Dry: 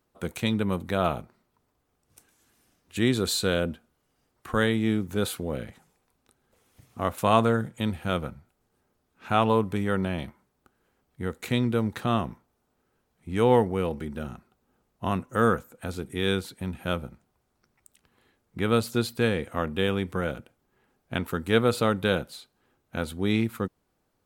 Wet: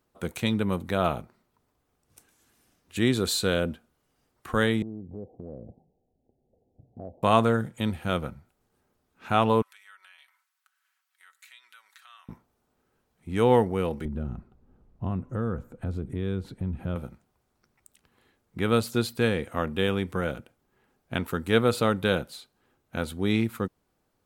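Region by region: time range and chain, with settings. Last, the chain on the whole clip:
0:04.82–0:07.23: Butterworth low-pass 770 Hz 72 dB per octave + downward compressor 3 to 1, threshold −38 dBFS
0:09.62–0:12.29: high-pass filter 1,300 Hz 24 dB per octave + downward compressor 2.5 to 1, threshold −58 dBFS + comb filter 5.3 ms, depth 46%
0:14.05–0:16.96: spectral tilt −4 dB per octave + downward compressor 2.5 to 1, threshold −31 dBFS
whole clip: no processing

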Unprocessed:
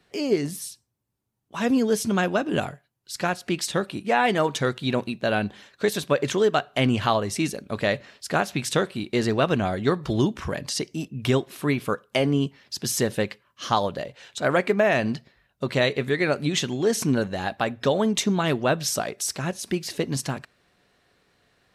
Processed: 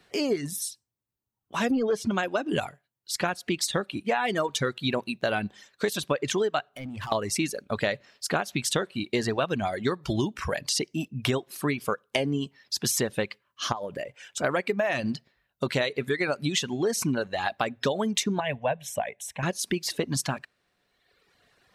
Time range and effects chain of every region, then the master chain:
0:01.71–0:02.11: spectral tilt −2 dB per octave + mid-hump overdrive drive 14 dB, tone 1,900 Hz, clips at −8 dBFS
0:06.69–0:07.12: parametric band 4,000 Hz −6 dB 2.4 octaves + downward compressor, threshold −30 dBFS + hard clipping −32 dBFS
0:13.72–0:14.44: parametric band 4,000 Hz −12 dB 0.32 octaves + downward compressor 5 to 1, threshold −29 dBFS
0:18.40–0:19.43: low-pass filter 2,900 Hz 6 dB per octave + phaser with its sweep stopped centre 1,300 Hz, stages 6
whole clip: reverb reduction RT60 1.3 s; low-shelf EQ 380 Hz −4 dB; downward compressor 5 to 1, threshold −27 dBFS; level +4 dB

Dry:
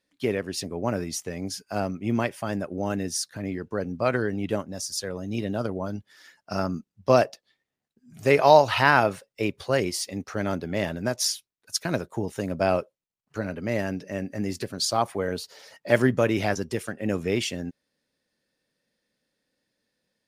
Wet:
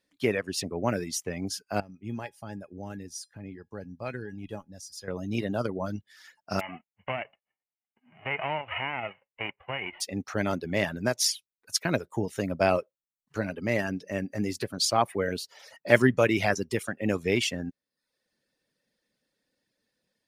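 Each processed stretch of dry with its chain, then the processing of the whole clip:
0:01.80–0:05.08: low-shelf EQ 190 Hz +8.5 dB + tuned comb filter 830 Hz, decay 0.21 s, mix 80%
0:06.59–0:10.00: spectral envelope flattened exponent 0.3 + downward compressor 4 to 1, threshold −22 dBFS + Chebyshev low-pass with heavy ripple 3,000 Hz, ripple 9 dB
whole clip: reverb reduction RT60 0.58 s; dynamic equaliser 2,200 Hz, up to +5 dB, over −44 dBFS, Q 1.8

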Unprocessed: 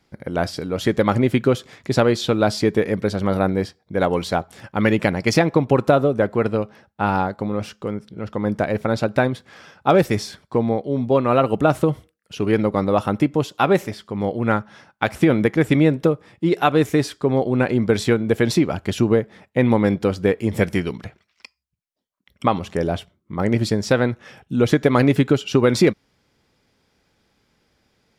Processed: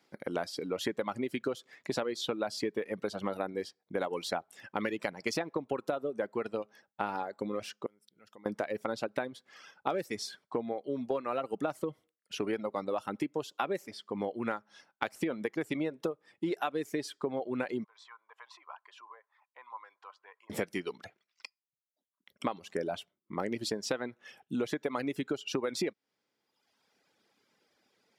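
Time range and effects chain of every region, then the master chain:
0:07.86–0:08.46: first-order pre-emphasis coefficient 0.8 + downward compressor 2 to 1, threshold −49 dBFS
0:17.84–0:20.50: downward compressor 4 to 1, threshold −21 dBFS + four-pole ladder high-pass 970 Hz, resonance 80% + head-to-tape spacing loss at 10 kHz 22 dB
whole clip: high-pass filter 270 Hz 12 dB per octave; reverb reduction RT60 1 s; downward compressor 6 to 1, threshold −26 dBFS; level −4 dB

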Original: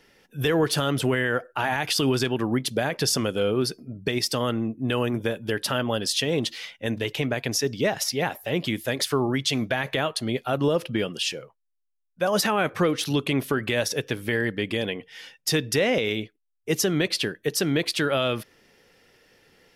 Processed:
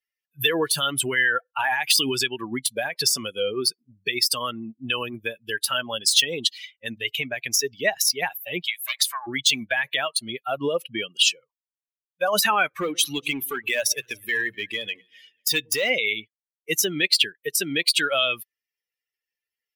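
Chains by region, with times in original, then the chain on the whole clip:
0:08.62–0:09.27: Butterworth high-pass 670 Hz + highs frequency-modulated by the lows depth 0.26 ms
0:12.68–0:15.90: mains-hum notches 60/120/180 Hz + hard clipping −19 dBFS + delay that swaps between a low-pass and a high-pass 123 ms, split 850 Hz, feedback 69%, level −13 dB
whole clip: spectral dynamics exaggerated over time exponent 2; de-essing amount 70%; spectral tilt +4.5 dB per octave; level +6.5 dB

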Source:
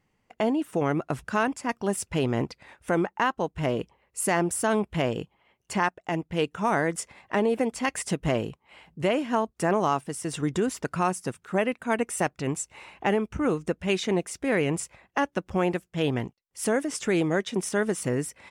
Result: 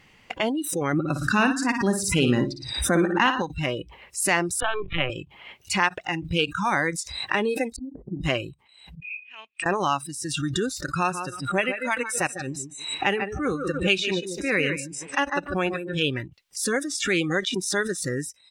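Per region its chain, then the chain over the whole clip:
0:00.93–0:03.42: parametric band 220 Hz +7.5 dB 1.4 octaves + flutter between parallel walls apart 9.8 metres, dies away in 0.48 s
0:04.60–0:05.10: low-shelf EQ 110 Hz −8.5 dB + linear-prediction vocoder at 8 kHz pitch kept + multiband upward and downward compressor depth 70%
0:07.76–0:08.24: inverse Chebyshev low-pass filter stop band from 2,300 Hz, stop band 80 dB + parametric band 81 Hz −11.5 dB 1.3 octaves
0:09.00–0:09.66: upward compression, threshold −27 dBFS + resonant band-pass 2,500 Hz, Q 18
0:10.90–0:16.02: tape delay 150 ms, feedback 32%, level −3.5 dB, low-pass 3,500 Hz + expander for the loud parts, over −44 dBFS
whole clip: noise reduction from a noise print of the clip's start 26 dB; parametric band 3,000 Hz +11.5 dB 1.9 octaves; background raised ahead of every attack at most 64 dB per second; level −1.5 dB

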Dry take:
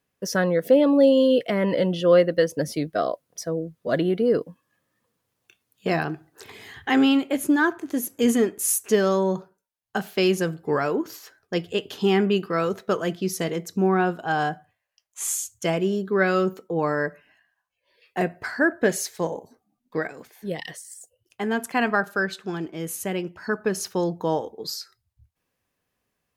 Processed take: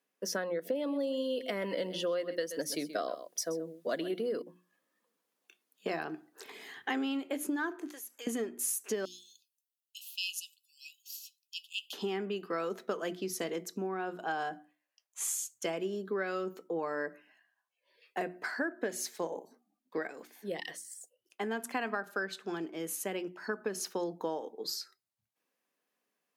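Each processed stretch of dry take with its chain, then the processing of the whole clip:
0:00.75–0:04.42: high-shelf EQ 3,100 Hz +9 dB + single-tap delay 128 ms −14.5 dB
0:07.87–0:08.27: high-pass filter 1,000 Hz + downward compressor 2 to 1, threshold −43 dBFS
0:09.05–0:11.93: linear-phase brick-wall high-pass 2,500 Hz + high-shelf EQ 11,000 Hz +7 dB
whole clip: mains-hum notches 60/120/180/240/300/360 Hz; downward compressor 10 to 1, threshold −25 dBFS; high-pass filter 220 Hz 24 dB per octave; level −5 dB

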